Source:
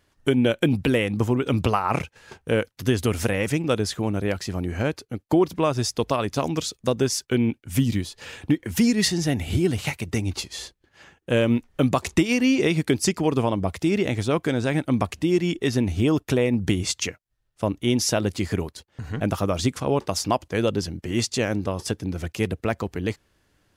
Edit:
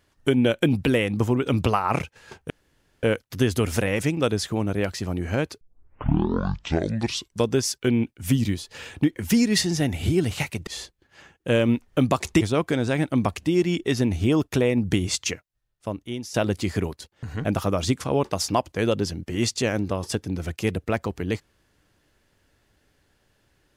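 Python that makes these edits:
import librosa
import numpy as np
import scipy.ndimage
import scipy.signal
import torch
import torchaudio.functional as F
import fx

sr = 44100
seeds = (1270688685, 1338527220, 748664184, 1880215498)

y = fx.edit(x, sr, fx.insert_room_tone(at_s=2.5, length_s=0.53),
    fx.tape_start(start_s=5.08, length_s=1.95),
    fx.cut(start_s=10.14, length_s=0.35),
    fx.cut(start_s=12.23, length_s=1.94),
    fx.fade_out_to(start_s=17.06, length_s=1.04, floor_db=-16.5), tone=tone)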